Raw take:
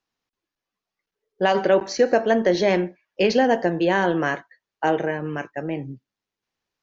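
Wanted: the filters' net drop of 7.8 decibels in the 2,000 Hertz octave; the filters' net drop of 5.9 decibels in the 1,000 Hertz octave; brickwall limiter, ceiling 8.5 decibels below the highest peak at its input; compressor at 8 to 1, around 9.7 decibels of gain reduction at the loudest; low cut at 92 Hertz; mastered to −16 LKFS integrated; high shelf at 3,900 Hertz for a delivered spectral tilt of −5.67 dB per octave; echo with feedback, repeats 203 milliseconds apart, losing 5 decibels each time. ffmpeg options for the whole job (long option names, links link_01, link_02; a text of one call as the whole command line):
ffmpeg -i in.wav -af "highpass=92,equalizer=frequency=1000:width_type=o:gain=-7.5,equalizer=frequency=2000:width_type=o:gain=-5.5,highshelf=frequency=3900:gain=-8,acompressor=threshold=-25dB:ratio=8,alimiter=level_in=0.5dB:limit=-24dB:level=0:latency=1,volume=-0.5dB,aecho=1:1:203|406|609|812|1015|1218|1421:0.562|0.315|0.176|0.0988|0.0553|0.031|0.0173,volume=17dB" out.wav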